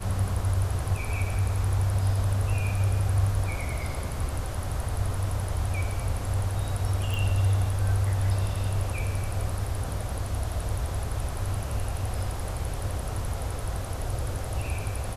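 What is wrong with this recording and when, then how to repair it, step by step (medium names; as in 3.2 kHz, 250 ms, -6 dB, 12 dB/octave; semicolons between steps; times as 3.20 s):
7.14 s: pop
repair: de-click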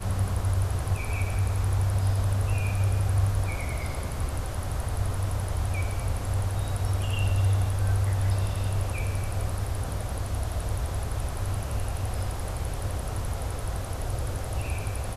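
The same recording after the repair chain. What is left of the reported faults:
nothing left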